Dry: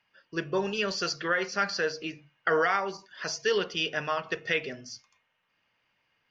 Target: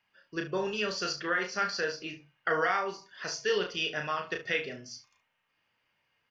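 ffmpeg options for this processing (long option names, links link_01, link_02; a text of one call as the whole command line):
ffmpeg -i in.wav -af "aecho=1:1:33|71:0.562|0.211,volume=-3.5dB" out.wav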